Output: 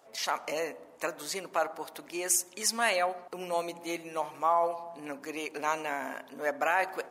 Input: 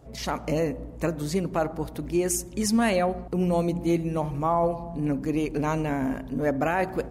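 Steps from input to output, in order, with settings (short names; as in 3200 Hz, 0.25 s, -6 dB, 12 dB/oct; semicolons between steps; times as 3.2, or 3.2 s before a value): HPF 800 Hz 12 dB/oct; gain +1.5 dB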